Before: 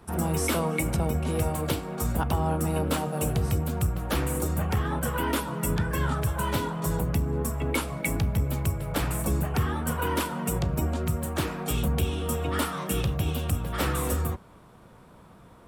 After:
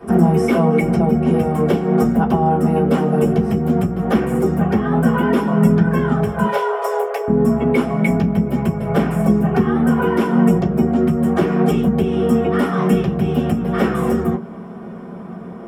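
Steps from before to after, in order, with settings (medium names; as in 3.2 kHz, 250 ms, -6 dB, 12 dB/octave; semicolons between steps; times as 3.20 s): 6.45–7.28 s: steep high-pass 420 Hz 96 dB/octave; compression, threshold -30 dBFS, peak gain reduction 10 dB; reverberation RT60 0.15 s, pre-delay 3 ms, DRR -6.5 dB; trim -3 dB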